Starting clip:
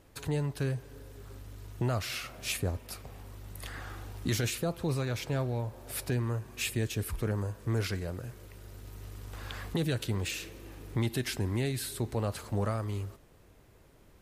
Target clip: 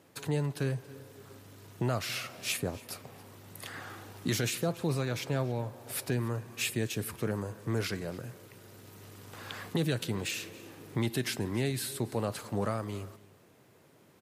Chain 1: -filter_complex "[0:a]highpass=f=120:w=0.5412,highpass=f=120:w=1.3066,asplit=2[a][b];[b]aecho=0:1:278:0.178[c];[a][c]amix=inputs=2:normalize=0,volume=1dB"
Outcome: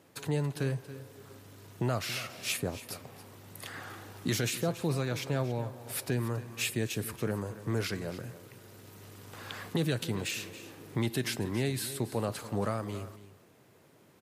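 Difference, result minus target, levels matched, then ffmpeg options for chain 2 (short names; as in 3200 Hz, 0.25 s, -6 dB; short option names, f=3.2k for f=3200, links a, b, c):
echo-to-direct +6 dB
-filter_complex "[0:a]highpass=f=120:w=0.5412,highpass=f=120:w=1.3066,asplit=2[a][b];[b]aecho=0:1:278:0.0891[c];[a][c]amix=inputs=2:normalize=0,volume=1dB"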